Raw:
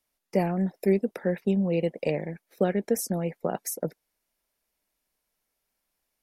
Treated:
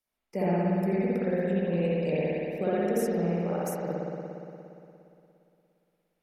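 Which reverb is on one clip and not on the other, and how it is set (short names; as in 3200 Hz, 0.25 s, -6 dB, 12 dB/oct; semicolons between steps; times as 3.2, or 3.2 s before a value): spring tank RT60 2.8 s, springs 58 ms, chirp 35 ms, DRR -9 dB; gain -9 dB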